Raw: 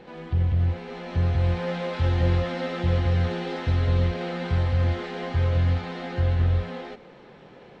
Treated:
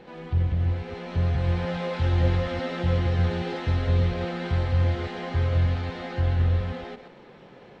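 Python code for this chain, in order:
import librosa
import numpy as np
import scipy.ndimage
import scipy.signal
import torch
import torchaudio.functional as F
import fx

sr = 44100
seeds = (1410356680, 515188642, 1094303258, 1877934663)

y = fx.reverse_delay(x, sr, ms=118, wet_db=-9)
y = y * librosa.db_to_amplitude(-1.0)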